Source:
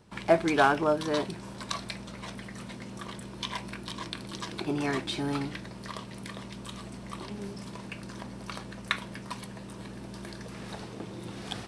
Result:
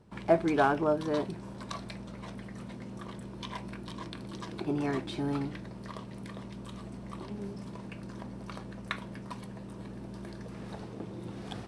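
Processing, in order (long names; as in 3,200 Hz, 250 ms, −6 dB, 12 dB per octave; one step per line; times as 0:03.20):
tilt shelving filter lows +5 dB, about 1,300 Hz
level −5 dB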